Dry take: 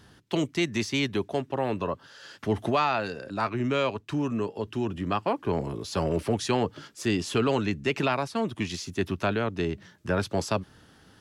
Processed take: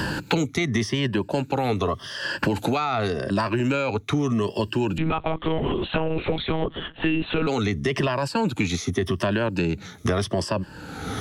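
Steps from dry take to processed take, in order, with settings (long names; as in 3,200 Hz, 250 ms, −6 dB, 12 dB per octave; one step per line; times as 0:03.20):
rippled gain that drifts along the octave scale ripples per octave 1.3, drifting −0.85 Hz, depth 12 dB
brickwall limiter −21 dBFS, peak gain reduction 9.5 dB
0:04.98–0:07.47: one-pitch LPC vocoder at 8 kHz 160 Hz
multiband upward and downward compressor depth 100%
level +6 dB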